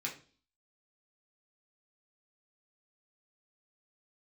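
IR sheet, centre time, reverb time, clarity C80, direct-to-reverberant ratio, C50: 18 ms, 0.40 s, 15.5 dB, -3.0 dB, 10.5 dB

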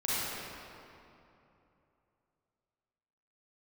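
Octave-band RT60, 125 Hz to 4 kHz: 3.5, 3.2, 3.0, 2.8, 2.3, 1.8 s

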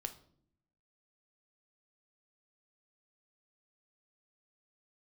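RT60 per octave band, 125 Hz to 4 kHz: 1.1, 1.0, 0.70, 0.50, 0.40, 0.40 s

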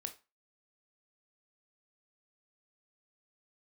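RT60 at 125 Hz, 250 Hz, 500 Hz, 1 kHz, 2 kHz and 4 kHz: 0.25, 0.25, 0.25, 0.30, 0.25, 0.25 s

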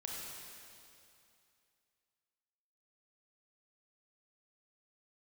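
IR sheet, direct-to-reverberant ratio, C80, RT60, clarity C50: -3.0 dB, -0.5 dB, 2.6 s, -1.5 dB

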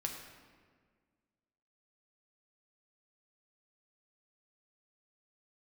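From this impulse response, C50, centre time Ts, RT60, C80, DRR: 5.0 dB, 44 ms, 1.7 s, 6.0 dB, 1.0 dB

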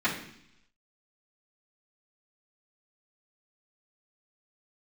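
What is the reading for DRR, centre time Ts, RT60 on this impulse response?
-12.5 dB, 26 ms, 0.70 s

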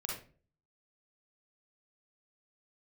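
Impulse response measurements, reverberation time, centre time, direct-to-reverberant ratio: 0.40 s, 42 ms, -2.5 dB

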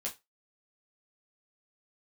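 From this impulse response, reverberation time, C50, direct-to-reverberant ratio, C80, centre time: 0.20 s, 15.5 dB, -3.0 dB, 23.5 dB, 14 ms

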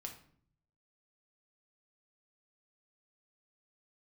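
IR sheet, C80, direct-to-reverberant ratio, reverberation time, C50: 13.0 dB, 2.0 dB, 0.55 s, 9.0 dB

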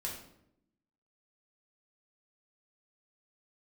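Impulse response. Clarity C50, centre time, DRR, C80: 4.5 dB, 35 ms, -3.5 dB, 8.0 dB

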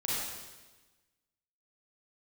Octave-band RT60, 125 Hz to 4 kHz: 1.4, 1.4, 1.3, 1.2, 1.2, 1.2 s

